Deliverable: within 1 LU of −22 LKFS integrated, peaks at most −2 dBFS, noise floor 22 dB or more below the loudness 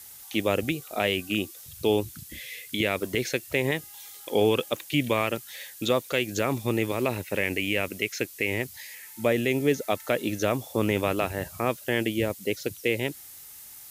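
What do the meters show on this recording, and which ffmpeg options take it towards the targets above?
background noise floor −46 dBFS; target noise floor −50 dBFS; integrated loudness −27.5 LKFS; sample peak −9.5 dBFS; target loudness −22.0 LKFS
→ -af "afftdn=noise_reduction=6:noise_floor=-46"
-af "volume=5.5dB"

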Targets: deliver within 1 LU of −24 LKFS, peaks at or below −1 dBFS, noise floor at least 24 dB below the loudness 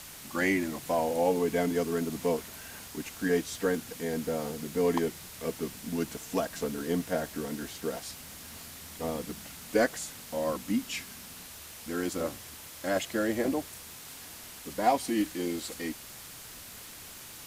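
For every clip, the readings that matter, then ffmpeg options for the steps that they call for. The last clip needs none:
background noise floor −46 dBFS; target noise floor −56 dBFS; integrated loudness −32.0 LKFS; sample peak −12.0 dBFS; target loudness −24.0 LKFS
→ -af "afftdn=noise_reduction=10:noise_floor=-46"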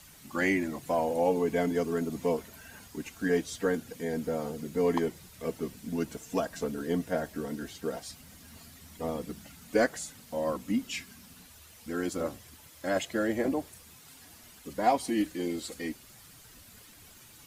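background noise floor −54 dBFS; target noise floor −56 dBFS
→ -af "afftdn=noise_reduction=6:noise_floor=-54"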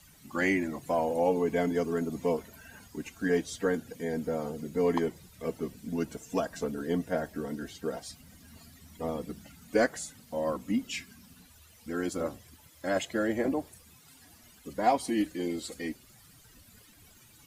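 background noise floor −58 dBFS; integrated loudness −32.0 LKFS; sample peak −12.5 dBFS; target loudness −24.0 LKFS
→ -af "volume=8dB"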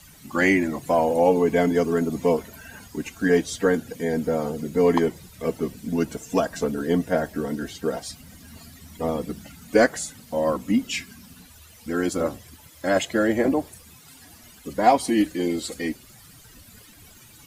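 integrated loudness −24.0 LKFS; sample peak −4.5 dBFS; background noise floor −50 dBFS

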